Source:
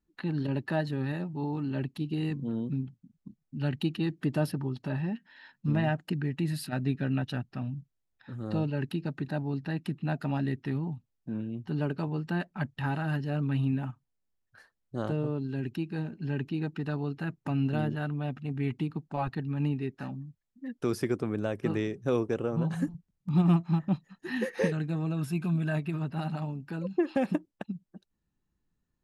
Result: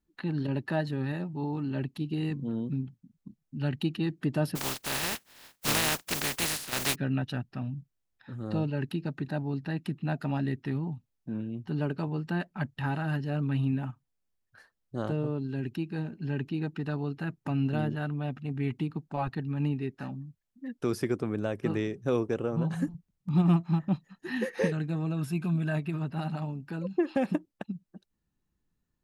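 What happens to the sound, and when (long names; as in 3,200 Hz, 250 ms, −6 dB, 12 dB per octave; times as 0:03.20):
0:04.55–0:06.94: compressing power law on the bin magnitudes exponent 0.2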